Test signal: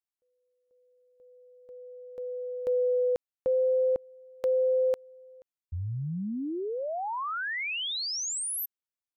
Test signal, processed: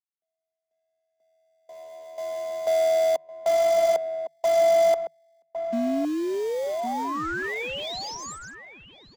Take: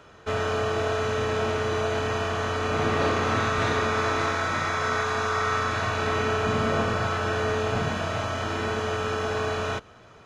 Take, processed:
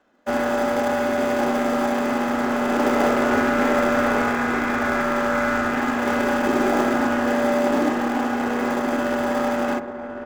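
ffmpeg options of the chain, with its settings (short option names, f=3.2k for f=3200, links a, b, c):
-filter_complex "[0:a]afwtdn=0.02,highshelf=f=2k:g=-8,aresample=16000,acrusher=bits=5:mode=log:mix=0:aa=0.000001,aresample=44100,afreqshift=150,asplit=2[a][b];[b]acrusher=samples=32:mix=1:aa=0.000001,volume=-11.5dB[c];[a][c]amix=inputs=2:normalize=0,asplit=2[d][e];[e]adelay=1108,volume=-8dB,highshelf=f=4k:g=-24.9[f];[d][f]amix=inputs=2:normalize=0,volume=4.5dB"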